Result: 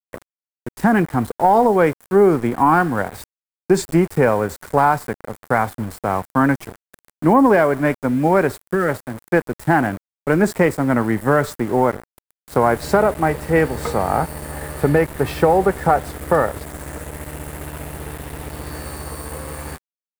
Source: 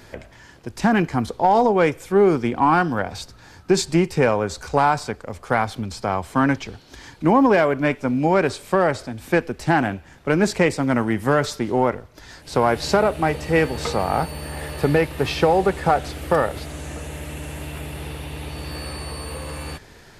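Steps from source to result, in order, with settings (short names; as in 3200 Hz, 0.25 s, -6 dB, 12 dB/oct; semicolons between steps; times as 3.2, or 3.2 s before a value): spectral gain 8.61–8.89, 520–1200 Hz -15 dB; sample gate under -31 dBFS; band shelf 4000 Hz -9 dB; gain +2.5 dB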